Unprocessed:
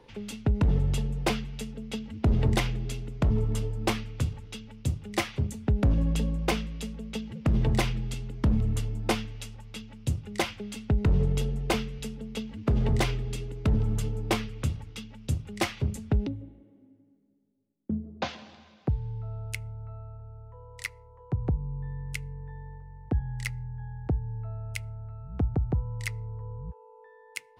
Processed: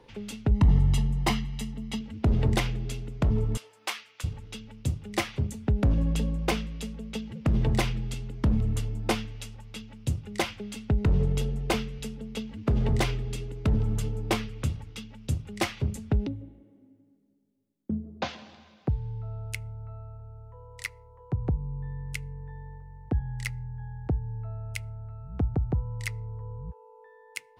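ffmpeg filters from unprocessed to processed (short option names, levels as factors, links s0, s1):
-filter_complex "[0:a]asettb=1/sr,asplit=3[s0][s1][s2];[s0]atrim=end=0.514[s3];[s1]atrim=start=0.51:end=2.01,asetpts=PTS-STARTPTS,afade=t=in:d=0.004:c=qsin,afade=t=out:st=1.496:d=0.004:c=qsin,aecho=1:1:1:0.65,atrim=end_sample=66150[s4];[s2]atrim=start=2.006[s5];[s3][s4]acrossfade=d=0.004:c1=hsin:c2=qsin[s6];[s6][s5]acrossfade=d=0.004:c1=qsin:c2=hsin,asettb=1/sr,asplit=3[s7][s8][s9];[s7]atrim=end=3.574[s10];[s8]atrim=start=3.57:end=4.24,asetpts=PTS-STARTPTS,afade=t=in:d=0.004:c=qsin,afade=t=out:st=0.666:d=0.004:c=qsin,highpass=1100[s11];[s9]atrim=start=4.236[s12];[s10][s11]acrossfade=d=0.004:c1=hsin:c2=qsin[s13];[s13][s12]acrossfade=d=0.004:c1=qsin:c2=hsin"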